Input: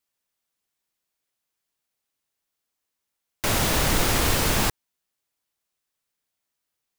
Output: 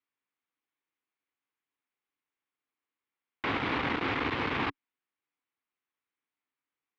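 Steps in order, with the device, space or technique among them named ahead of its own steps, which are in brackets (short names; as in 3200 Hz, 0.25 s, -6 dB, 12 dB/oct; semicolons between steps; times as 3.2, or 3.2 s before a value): guitar amplifier (tube stage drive 22 dB, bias 0.75; tone controls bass -5 dB, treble -13 dB; speaker cabinet 93–3800 Hz, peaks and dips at 190 Hz -4 dB, 280 Hz +7 dB, 610 Hz -8 dB, 1100 Hz +3 dB, 2200 Hz +4 dB)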